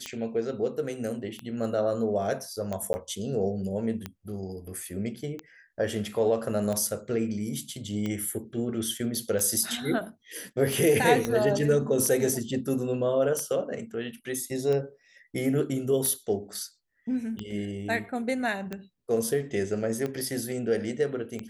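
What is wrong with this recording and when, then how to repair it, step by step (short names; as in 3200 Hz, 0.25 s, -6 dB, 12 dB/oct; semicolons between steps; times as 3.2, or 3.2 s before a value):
tick 45 rpm -19 dBFS
2.93–2.94 gap 10 ms
11.25 pop -14 dBFS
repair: de-click; interpolate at 2.93, 10 ms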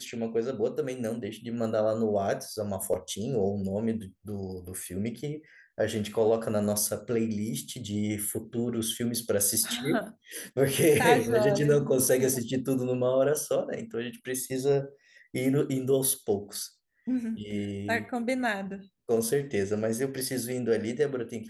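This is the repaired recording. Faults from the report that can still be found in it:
11.25 pop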